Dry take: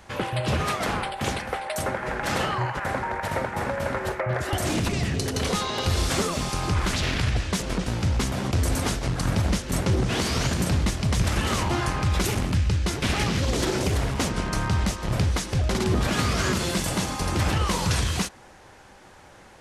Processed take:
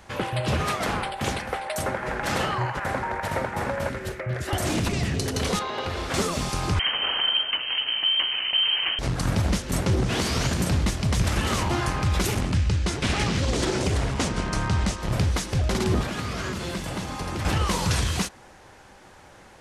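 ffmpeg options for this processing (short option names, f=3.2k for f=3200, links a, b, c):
-filter_complex "[0:a]asettb=1/sr,asplit=3[a][b][c];[a]atrim=end=3.894[d];[b]atrim=start=3.89:end=4.48,asetpts=PTS-STARTPTS,afade=t=in:d=0.004:c=qsin,afade=t=out:st=0.586:d=0.004:c=qsin,equalizer=f=890:t=o:w=1.4:g=-12.5[e];[c]atrim=start=4.476[f];[d][e]acrossfade=d=0.004:c1=hsin:c2=qsin[g];[g][f]acrossfade=d=0.004:c1=qsin:c2=hsin,asettb=1/sr,asplit=3[h][i][j];[h]atrim=end=5.594[k];[i]atrim=start=5.59:end=6.14,asetpts=PTS-STARTPTS,afade=t=in:d=0.004:c=qsin,afade=t=out:st=0.546:d=0.004:c=qsin,bass=f=250:g=-10,treble=f=4k:g=-15[l];[j]atrim=start=6.136[m];[k][l]acrossfade=d=0.004:c1=hsin:c2=qsin[n];[n][m]acrossfade=d=0.004:c1=qsin:c2=hsin,asettb=1/sr,asplit=3[o][p][q];[o]atrim=end=6.794[r];[p]atrim=start=6.79:end=8.99,asetpts=PTS-STARTPTS,afade=t=in:d=0.004:c=qsin,afade=t=out:st=2.196:d=0.004:c=qsin,lowpass=f=2.7k:t=q:w=0.5098,lowpass=f=2.7k:t=q:w=0.6013,lowpass=f=2.7k:t=q:w=0.9,lowpass=f=2.7k:t=q:w=2.563,afreqshift=-3200[s];[q]atrim=start=8.986[t];[r][s]acrossfade=d=0.004:c1=hsin:c2=qsin[u];[u][t]acrossfade=d=0.004:c1=qsin:c2=hsin,asettb=1/sr,asplit=3[v][w][x];[v]atrim=end=12.414[y];[w]atrim=start=12.41:end=15,asetpts=PTS-STARTPTS,afade=t=in:d=0.004:c=qsin,afade=t=out:st=2.586:d=0.004:c=qsin,lowpass=f=10k:w=0.5412,lowpass=f=10k:w=1.3066[z];[x]atrim=start=14.996[aa];[y][z]acrossfade=d=0.004:c1=hsin:c2=qsin[ab];[ab][aa]acrossfade=d=0.004:c1=qsin:c2=hsin,asettb=1/sr,asplit=3[ac][ad][ae];[ac]atrim=end=16.014[af];[ad]atrim=start=16.01:end=17.45,asetpts=PTS-STARTPTS,afade=t=in:d=0.004:c=qsin,afade=t=out:st=1.436:d=0.004:c=qsin,acrossover=split=100|4100[ag][ah][ai];[ag]acompressor=threshold=-37dB:ratio=4[aj];[ah]acompressor=threshold=-29dB:ratio=4[ak];[ai]acompressor=threshold=-45dB:ratio=4[al];[aj][ak][al]amix=inputs=3:normalize=0[am];[ae]atrim=start=17.446[an];[af][am]acrossfade=d=0.004:c1=hsin:c2=qsin[ao];[ao][an]acrossfade=d=0.004:c1=qsin:c2=hsin"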